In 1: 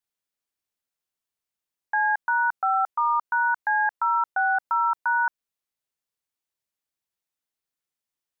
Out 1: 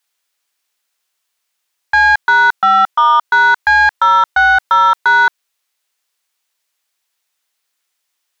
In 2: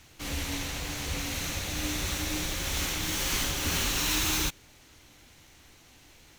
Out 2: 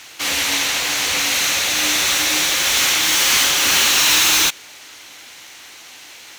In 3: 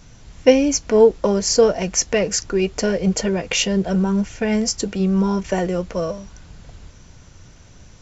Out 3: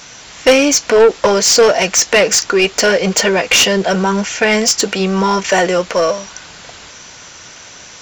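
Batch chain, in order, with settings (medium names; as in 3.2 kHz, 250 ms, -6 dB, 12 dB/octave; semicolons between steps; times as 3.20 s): tilt EQ +2 dB/octave; overdrive pedal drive 23 dB, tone 4.1 kHz, clips at 0 dBFS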